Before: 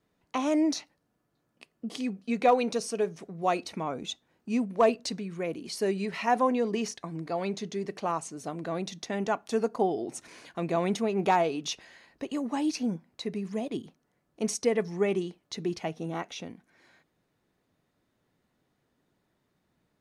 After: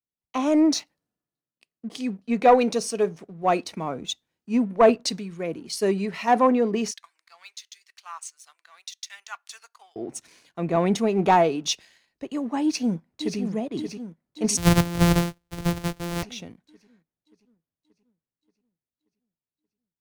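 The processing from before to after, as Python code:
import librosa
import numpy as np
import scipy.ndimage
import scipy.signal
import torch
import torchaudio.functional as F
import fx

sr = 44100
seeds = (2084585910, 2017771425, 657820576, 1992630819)

y = fx.highpass(x, sr, hz=1200.0, slope=24, at=(6.91, 9.96))
y = fx.echo_throw(y, sr, start_s=12.62, length_s=0.77, ms=580, feedback_pct=75, wet_db=-5.5)
y = fx.sample_sort(y, sr, block=256, at=(14.57, 16.23))
y = fx.low_shelf(y, sr, hz=150.0, db=5.0)
y = fx.leveller(y, sr, passes=1)
y = fx.band_widen(y, sr, depth_pct=70)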